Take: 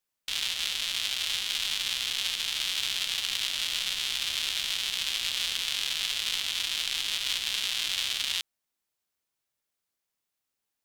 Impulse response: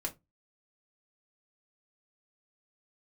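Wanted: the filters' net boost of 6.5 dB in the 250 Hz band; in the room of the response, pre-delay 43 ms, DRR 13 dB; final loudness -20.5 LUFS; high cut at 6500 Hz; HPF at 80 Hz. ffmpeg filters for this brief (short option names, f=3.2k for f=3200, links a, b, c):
-filter_complex "[0:a]highpass=80,lowpass=6.5k,equalizer=f=250:t=o:g=8.5,asplit=2[a][b];[1:a]atrim=start_sample=2205,adelay=43[c];[b][c]afir=irnorm=-1:irlink=0,volume=-14.5dB[d];[a][d]amix=inputs=2:normalize=0,volume=8dB"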